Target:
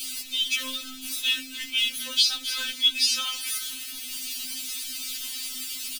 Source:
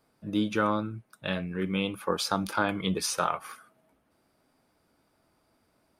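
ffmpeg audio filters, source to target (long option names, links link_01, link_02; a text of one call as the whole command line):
ffmpeg -i in.wav -filter_complex "[0:a]aeval=exprs='val(0)+0.5*0.015*sgn(val(0))':channel_layout=same,asettb=1/sr,asplit=3[link_01][link_02][link_03];[link_01]atrim=end=1.974[link_04];[link_02]atrim=start=1.97:end=3.48,asetpts=PTS-STARTPTS,afade=type=in:duration=0.004:curve=qsin,afade=type=out:start_time=1.506:duration=0.004:curve=qsin,acrossover=split=4800[link_05][link_06];[link_06]acompressor=threshold=-46dB:ratio=4:attack=1:release=60[link_07];[link_05][link_07]amix=inputs=2:normalize=0[link_08];[link_03]atrim=start=3.476[link_09];[link_04][link_08]acrossfade=duration=0.004:curve1=hsin:curve2=qsin[link_10];[link_10][link_09]acrossfade=duration=0.004:curve1=qsin:curve2=hsin,firequalizer=gain_entry='entry(120,0);entry(460,-23);entry(2800,15)':delay=0.05:min_phase=1,asplit=4[link_11][link_12][link_13][link_14];[link_12]adelay=271,afreqshift=50,volume=-18dB[link_15];[link_13]adelay=542,afreqshift=100,volume=-26.9dB[link_16];[link_14]adelay=813,afreqshift=150,volume=-35.7dB[link_17];[link_11][link_15][link_16][link_17]amix=inputs=4:normalize=0,afftfilt=real='re*3.46*eq(mod(b,12),0)':imag='im*3.46*eq(mod(b,12),0)':win_size=2048:overlap=0.75,volume=1.5dB" out.wav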